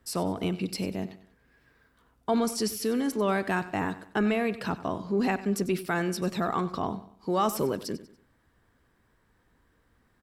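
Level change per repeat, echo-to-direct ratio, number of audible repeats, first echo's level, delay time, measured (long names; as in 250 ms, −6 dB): −8.5 dB, −15.0 dB, 3, −15.5 dB, 95 ms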